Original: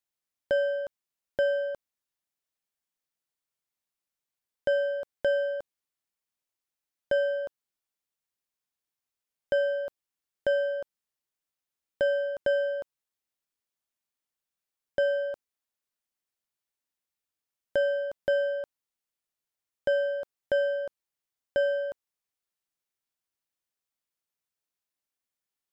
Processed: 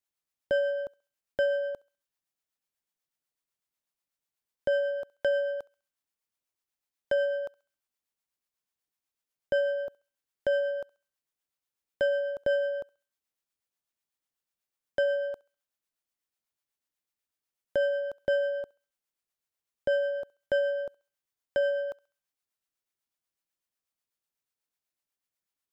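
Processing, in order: harmonic tremolo 8.1 Hz, depth 50%, crossover 570 Hz; thinning echo 67 ms, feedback 49%, high-pass 1000 Hz, level -21 dB; gain +1.5 dB

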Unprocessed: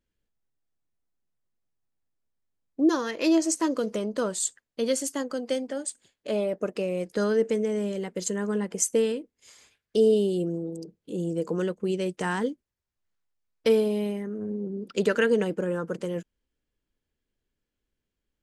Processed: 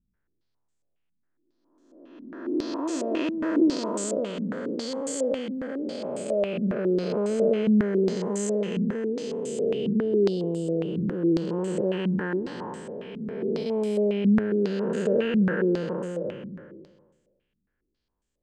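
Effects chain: time blur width 0.975 s; stepped low-pass 7.3 Hz 210–7700 Hz; gain +3.5 dB

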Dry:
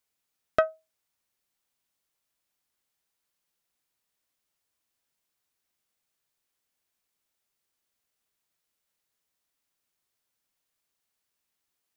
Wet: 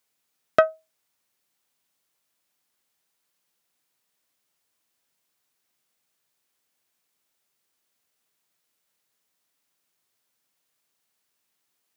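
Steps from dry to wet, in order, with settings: HPF 110 Hz 12 dB/oct; gain +5.5 dB

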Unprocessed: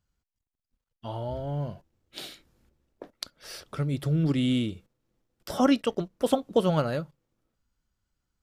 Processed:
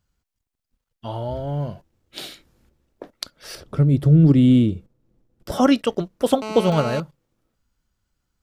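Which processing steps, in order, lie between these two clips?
3.55–5.52 tilt shelf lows +7.5 dB, about 700 Hz; 6.42–7 GSM buzz -35 dBFS; gain +5.5 dB

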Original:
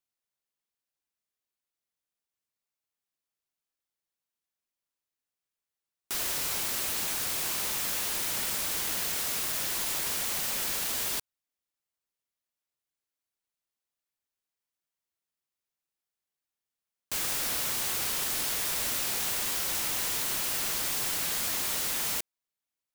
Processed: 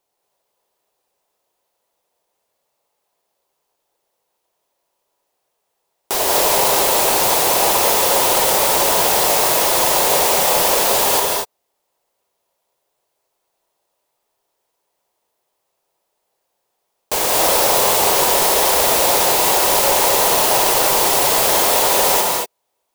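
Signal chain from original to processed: in parallel at -2 dB: limiter -24.5 dBFS, peak gain reduction 6.5 dB; on the sum: band shelf 610 Hz +13 dB; non-linear reverb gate 0.26 s rising, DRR -1 dB; gain +7 dB

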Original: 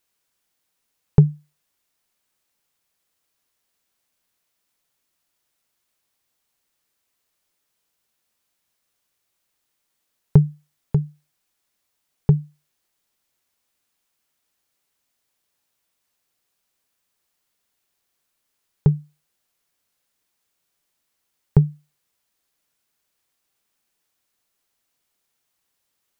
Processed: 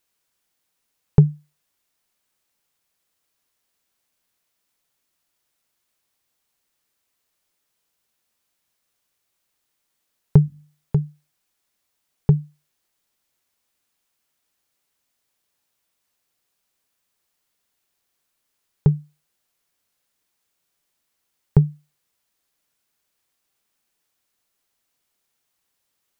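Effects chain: 10.46–10.95 notches 50/100/150/200/250/300 Hz

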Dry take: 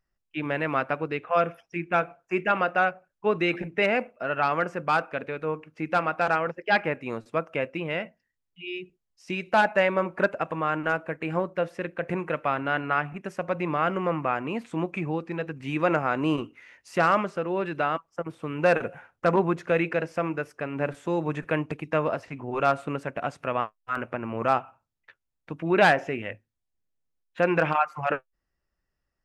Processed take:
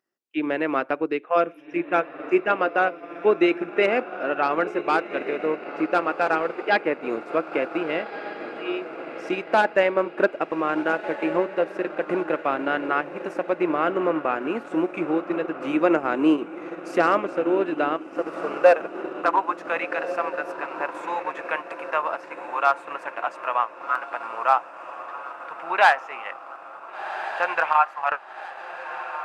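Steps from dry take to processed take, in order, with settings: high-pass sweep 320 Hz -> 930 Hz, 17.97–19.3; diffused feedback echo 1.498 s, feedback 54%, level -10 dB; transient shaper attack +1 dB, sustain -5 dB

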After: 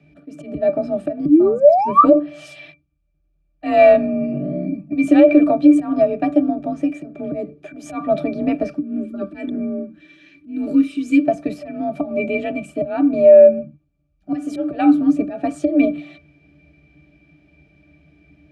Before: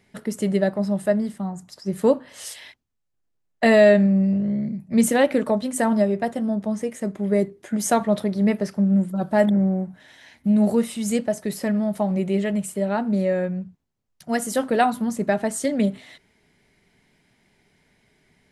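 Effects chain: bell 1100 Hz -9 dB 0.33 oct; 1.25–2.05 painted sound rise 220–1300 Hz -17 dBFS; bell 3800 Hz +6 dB 2.8 oct; auto swell 0.191 s; frequency shift +41 Hz; 8.76–11.25 fixed phaser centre 300 Hz, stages 4; soft clip -5 dBFS, distortion -26 dB; octave resonator D, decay 0.13 s; maximiser +21 dB; gain -1 dB

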